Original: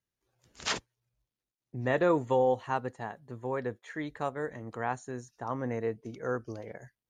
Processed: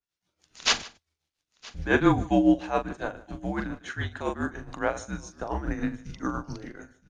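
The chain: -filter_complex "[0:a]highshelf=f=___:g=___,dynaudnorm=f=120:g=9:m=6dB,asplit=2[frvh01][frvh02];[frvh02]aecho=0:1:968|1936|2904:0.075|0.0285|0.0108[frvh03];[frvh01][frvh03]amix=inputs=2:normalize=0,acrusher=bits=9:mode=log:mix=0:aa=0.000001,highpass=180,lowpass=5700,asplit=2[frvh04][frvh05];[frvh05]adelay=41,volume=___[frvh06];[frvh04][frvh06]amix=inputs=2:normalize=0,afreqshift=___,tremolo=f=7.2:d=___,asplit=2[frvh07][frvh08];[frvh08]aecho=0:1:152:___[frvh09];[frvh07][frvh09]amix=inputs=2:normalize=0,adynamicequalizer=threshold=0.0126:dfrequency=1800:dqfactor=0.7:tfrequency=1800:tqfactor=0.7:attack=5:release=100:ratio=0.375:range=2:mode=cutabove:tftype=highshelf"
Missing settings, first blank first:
2700, 11.5, -7dB, -200, 0.66, 0.0944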